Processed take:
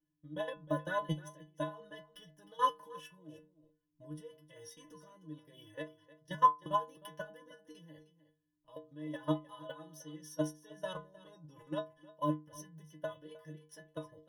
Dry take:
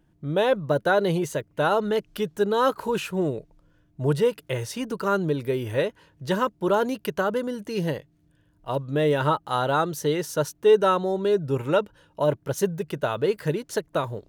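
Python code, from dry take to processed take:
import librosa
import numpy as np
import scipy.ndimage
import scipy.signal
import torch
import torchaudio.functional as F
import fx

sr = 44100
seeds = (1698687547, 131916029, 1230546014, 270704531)

p1 = fx.ripple_eq(x, sr, per_octave=1.2, db=17)
p2 = fx.level_steps(p1, sr, step_db=17)
p3 = fx.stiff_resonator(p2, sr, f0_hz=150.0, decay_s=0.39, stiffness=0.008)
p4 = p3 + fx.echo_single(p3, sr, ms=309, db=-14.5, dry=0)
p5 = fx.upward_expand(p4, sr, threshold_db=-46.0, expansion=1.5)
y = p5 * 10.0 ** (5.0 / 20.0)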